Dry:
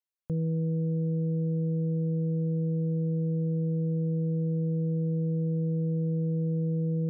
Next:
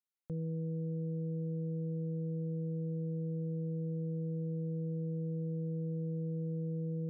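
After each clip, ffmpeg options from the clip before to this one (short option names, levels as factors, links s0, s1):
-af "equalizer=f=70:t=o:w=1.5:g=-7,volume=0.447"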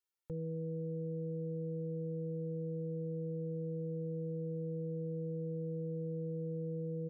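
-af "aecho=1:1:2.2:0.81,volume=0.794"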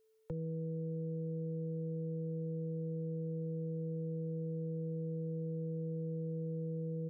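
-filter_complex "[0:a]acrossover=split=130|330[s0][s1][s2];[s0]acompressor=threshold=0.002:ratio=4[s3];[s1]acompressor=threshold=0.00251:ratio=4[s4];[s2]acompressor=threshold=0.00178:ratio=4[s5];[s3][s4][s5]amix=inputs=3:normalize=0,aeval=exprs='val(0)+0.000158*sin(2*PI*440*n/s)':c=same,volume=2.37"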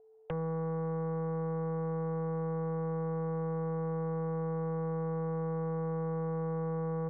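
-af "lowpass=f=740:t=q:w=9.2,aeval=exprs='0.0422*(cos(1*acos(clip(val(0)/0.0422,-1,1)))-cos(1*PI/2))+0.0119*(cos(5*acos(clip(val(0)/0.0422,-1,1)))-cos(5*PI/2))':c=same"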